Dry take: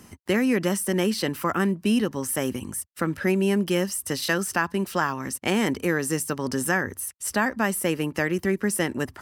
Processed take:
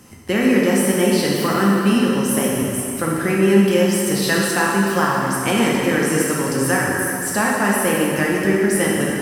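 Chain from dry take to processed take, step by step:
dense smooth reverb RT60 2.9 s, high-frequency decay 0.8×, DRR −4.5 dB
level +1.5 dB

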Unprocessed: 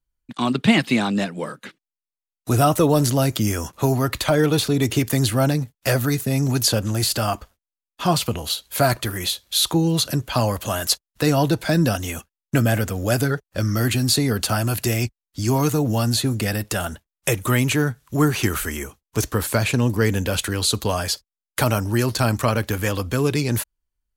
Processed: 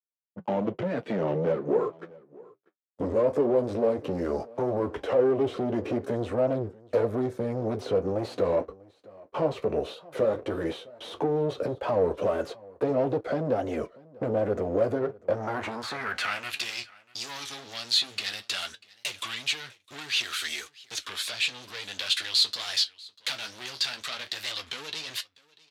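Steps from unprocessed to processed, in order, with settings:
gliding playback speed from 81% → 107%
noise reduction from a noise print of the clip's start 11 dB
noise gate −36 dBFS, range −13 dB
high-shelf EQ 5,600 Hz −7 dB
downward compressor, threshold −22 dBFS, peak gain reduction 12 dB
leveller curve on the samples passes 5
flanger 0.15 Hz, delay 7.6 ms, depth 6.4 ms, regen −50%
band-pass filter sweep 480 Hz → 3,800 Hz, 0:15.16–0:16.74
single-tap delay 642 ms −23.5 dB
wow of a warped record 33 1/3 rpm, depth 160 cents

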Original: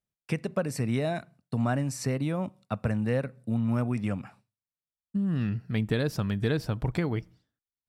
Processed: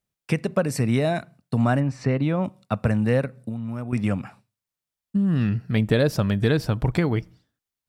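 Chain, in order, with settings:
0:01.79–0:02.43: low-pass filter 2,100 Hz → 4,800 Hz 12 dB per octave
0:03.25–0:03.93: downward compressor 5 to 1, threshold −35 dBFS, peak gain reduction 11 dB
0:05.76–0:06.44: parametric band 580 Hz +7 dB 0.36 octaves
level +6.5 dB

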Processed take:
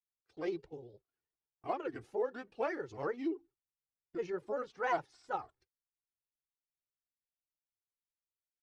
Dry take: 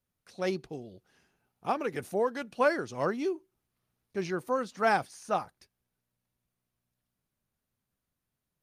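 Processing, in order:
noise gate −55 dBFS, range −21 dB
high-shelf EQ 5,500 Hz +10 dB
comb filter 2.4 ms, depth 79%
granular cloud, spray 12 ms, pitch spread up and down by 3 semitones
head-to-tape spacing loss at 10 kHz 26 dB
level −6.5 dB

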